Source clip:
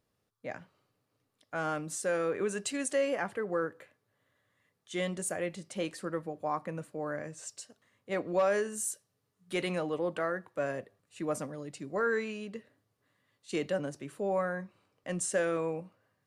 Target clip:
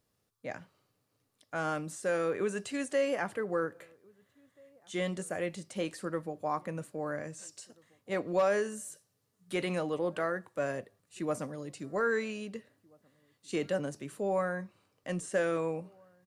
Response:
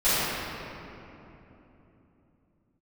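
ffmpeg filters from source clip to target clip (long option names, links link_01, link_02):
-filter_complex "[0:a]bass=frequency=250:gain=1,treble=frequency=4000:gain=5,asplit=2[link_01][link_02];[link_02]adelay=1633,volume=-28dB,highshelf=frequency=4000:gain=-36.7[link_03];[link_01][link_03]amix=inputs=2:normalize=0,acrossover=split=2800[link_04][link_05];[link_05]acompressor=threshold=-43dB:ratio=4:attack=1:release=60[link_06];[link_04][link_06]amix=inputs=2:normalize=0"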